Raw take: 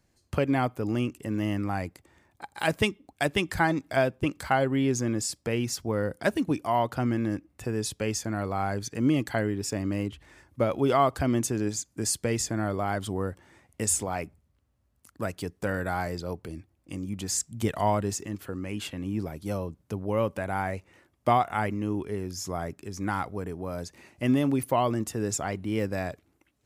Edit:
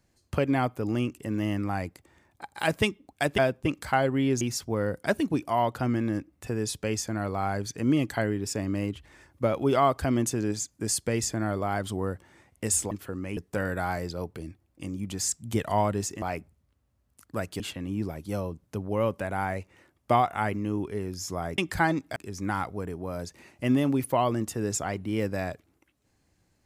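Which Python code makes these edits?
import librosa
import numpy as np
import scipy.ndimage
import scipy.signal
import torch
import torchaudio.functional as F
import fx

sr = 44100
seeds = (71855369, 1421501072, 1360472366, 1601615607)

y = fx.edit(x, sr, fx.move(start_s=3.38, length_s=0.58, to_s=22.75),
    fx.cut(start_s=4.99, length_s=0.59),
    fx.swap(start_s=14.08, length_s=1.38, other_s=18.31, other_length_s=0.46), tone=tone)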